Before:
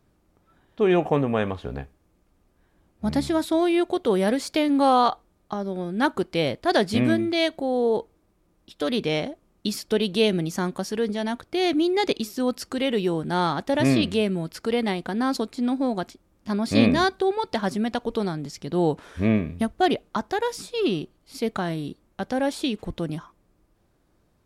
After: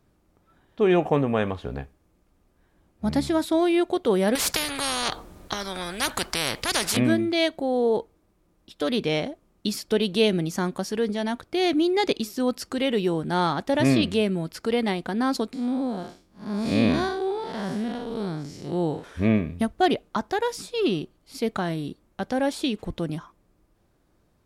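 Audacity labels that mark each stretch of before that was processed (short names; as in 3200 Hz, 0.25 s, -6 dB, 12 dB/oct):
4.350000	6.970000	spectral compressor 4:1
15.530000	19.040000	time blur width 0.161 s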